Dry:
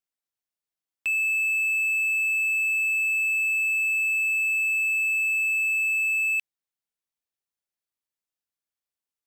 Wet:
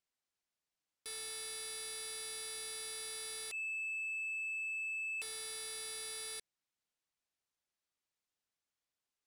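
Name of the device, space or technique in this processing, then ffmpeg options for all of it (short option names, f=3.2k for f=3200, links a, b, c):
overflowing digital effects unit: -filter_complex "[0:a]asettb=1/sr,asplit=3[a][b][c];[a]atrim=end=3.514[d];[b]atrim=start=3.51:end=5.22,asetpts=PTS-STARTPTS,afade=t=in:d=0.004:c=qsin,afade=t=out:st=1.706:d=0.004:c=qsin,agate=range=-33dB:threshold=-13dB:ratio=3:detection=peak[e];[c]atrim=start=5.216[f];[d][e]acrossfade=d=0.004:c1=hsin:c2=qsin[g];[g][f]acrossfade=d=0.004:c1=qsin:c2=hsin,aeval=exprs='(mod(56.2*val(0)+1,2)-1)/56.2':c=same,lowpass=8.4k,volume=1.5dB"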